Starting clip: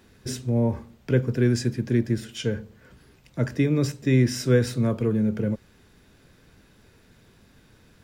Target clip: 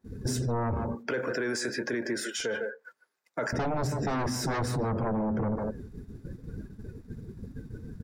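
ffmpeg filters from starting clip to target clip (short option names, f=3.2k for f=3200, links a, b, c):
-filter_complex "[0:a]asettb=1/sr,asplit=3[a][b][c];[a]atrim=end=0.954[d];[b]atrim=start=0.95:end=3.53,asetpts=PTS-STARTPTS,afade=t=in:d=0.004:c=qsin,afade=t=out:st=2.576:d=0.004:c=qsin,highpass=810[e];[c]atrim=start=3.526[f];[d][e]acrossfade=d=0.004:c1=hsin:c2=qsin[g];[g][f]acrossfade=d=0.004:c1=qsin:c2=hsin,agate=range=-15dB:threshold=-55dB:ratio=16:detection=peak,aeval=exprs='0.355*sin(PI/2*5.01*val(0)/0.355)':c=same,asplit=2[h][i];[i]adelay=150,highpass=300,lowpass=3.4k,asoftclip=type=hard:threshold=-17dB,volume=-9dB[j];[h][j]amix=inputs=2:normalize=0,afftdn=nr=20:nf=-34,equalizer=f=2.9k:w=1.4:g=-10,alimiter=limit=-19dB:level=0:latency=1:release=19,asoftclip=type=tanh:threshold=-8.5dB,acompressor=threshold=-27dB:ratio=6,adynamicequalizer=threshold=0.00631:dfrequency=1900:dqfactor=0.7:tfrequency=1900:tqfactor=0.7:attack=5:release=100:ratio=0.375:range=2:mode=cutabove:tftype=highshelf"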